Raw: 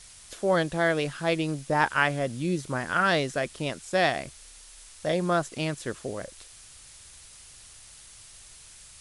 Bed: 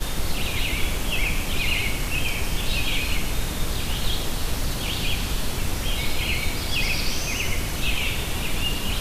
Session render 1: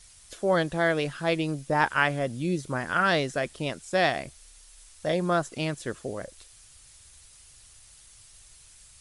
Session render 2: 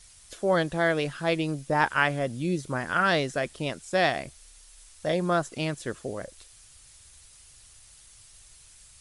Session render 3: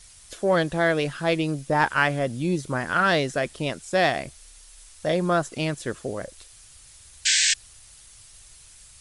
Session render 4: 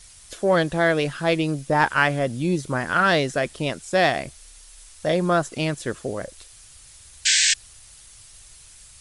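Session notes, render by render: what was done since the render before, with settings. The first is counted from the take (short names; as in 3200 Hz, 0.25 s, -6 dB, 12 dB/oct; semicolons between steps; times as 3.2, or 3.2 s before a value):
denoiser 6 dB, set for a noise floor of -50 dBFS
nothing audible
in parallel at -6 dB: soft clip -20 dBFS, distortion -13 dB; 7.25–7.54 on the sum: painted sound noise 1500–8400 Hz -20 dBFS
gain +2 dB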